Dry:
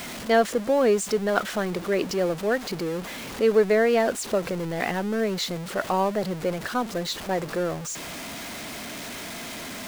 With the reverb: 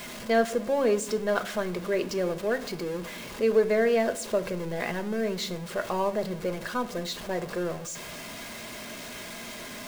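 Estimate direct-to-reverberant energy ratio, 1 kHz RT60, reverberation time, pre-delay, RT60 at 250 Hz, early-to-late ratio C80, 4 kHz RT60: 6.5 dB, 0.55 s, 0.65 s, 5 ms, 0.95 s, 19.5 dB, 0.40 s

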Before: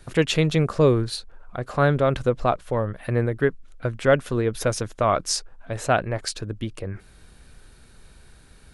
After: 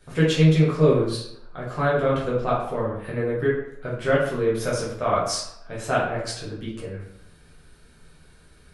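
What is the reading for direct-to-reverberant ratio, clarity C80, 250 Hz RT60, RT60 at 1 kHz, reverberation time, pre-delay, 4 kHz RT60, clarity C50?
-7.0 dB, 6.5 dB, 0.75 s, 0.80 s, 0.80 s, 6 ms, 0.50 s, 3.0 dB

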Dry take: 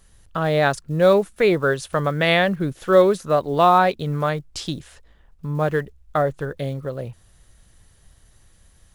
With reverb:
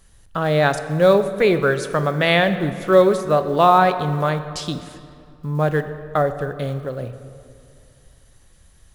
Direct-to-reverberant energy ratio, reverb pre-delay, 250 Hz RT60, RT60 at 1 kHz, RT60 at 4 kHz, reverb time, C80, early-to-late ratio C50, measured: 10.0 dB, 16 ms, 2.5 s, 2.4 s, 1.5 s, 2.4 s, 12.0 dB, 11.0 dB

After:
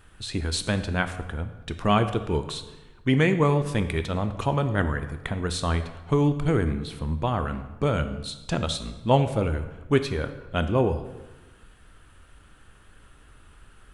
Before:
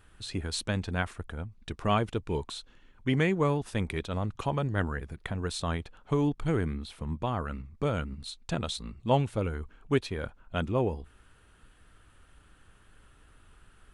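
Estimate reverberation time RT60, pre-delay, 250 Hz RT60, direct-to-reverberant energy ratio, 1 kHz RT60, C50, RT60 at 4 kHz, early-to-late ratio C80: 1.1 s, 11 ms, 1.3 s, 9.0 dB, 1.1 s, 11.0 dB, 0.85 s, 12.5 dB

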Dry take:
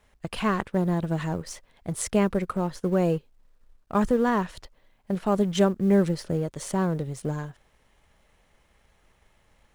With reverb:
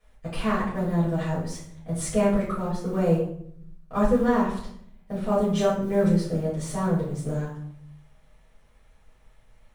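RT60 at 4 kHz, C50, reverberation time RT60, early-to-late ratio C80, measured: 0.45 s, 4.0 dB, 0.65 s, 8.0 dB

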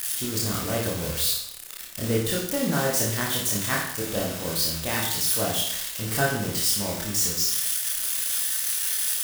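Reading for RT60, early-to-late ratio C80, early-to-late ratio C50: 0.70 s, 6.0 dB, 2.5 dB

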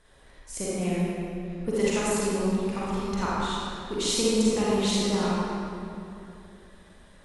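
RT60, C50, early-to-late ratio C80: 2.8 s, -6.5 dB, -3.5 dB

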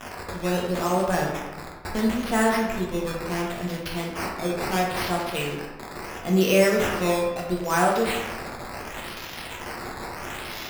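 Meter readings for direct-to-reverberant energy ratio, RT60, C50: -2.5 dB, 1.1 s, 2.5 dB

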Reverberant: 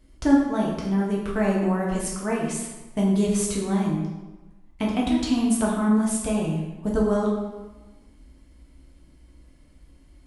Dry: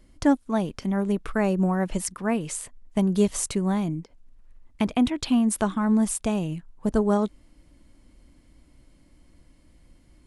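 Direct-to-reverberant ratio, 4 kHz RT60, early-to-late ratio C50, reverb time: -3.5 dB, 0.85 s, 2.5 dB, 1.2 s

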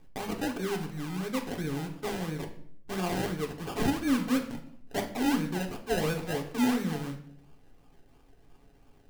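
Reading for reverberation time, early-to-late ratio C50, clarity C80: 0.60 s, 10.5 dB, 13.5 dB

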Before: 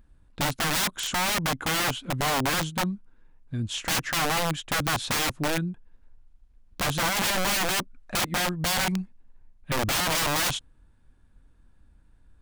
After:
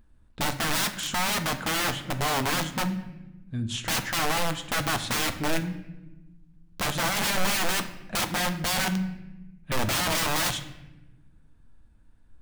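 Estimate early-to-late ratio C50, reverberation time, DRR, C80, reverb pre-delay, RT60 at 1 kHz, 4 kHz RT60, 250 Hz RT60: 11.5 dB, 1.0 s, 7.0 dB, 14.0 dB, 4 ms, 0.85 s, 0.75 s, 1.8 s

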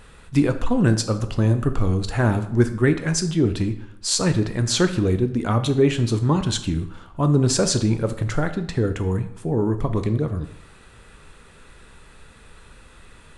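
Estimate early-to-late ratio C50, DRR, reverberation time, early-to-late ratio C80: 12.0 dB, 8.5 dB, 0.70 s, 14.5 dB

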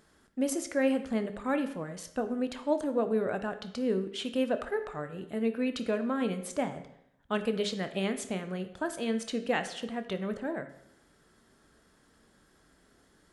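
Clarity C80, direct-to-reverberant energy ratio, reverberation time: 14.0 dB, 8.5 dB, 0.80 s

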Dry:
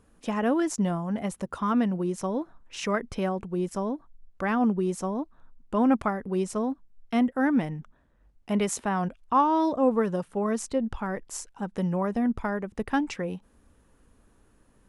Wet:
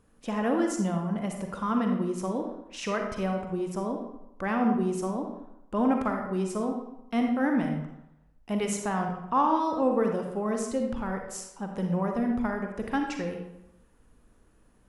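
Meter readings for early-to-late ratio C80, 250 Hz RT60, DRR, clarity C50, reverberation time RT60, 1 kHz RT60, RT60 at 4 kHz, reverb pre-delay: 6.5 dB, 0.80 s, 2.5 dB, 3.5 dB, 0.85 s, 0.90 s, 0.60 s, 37 ms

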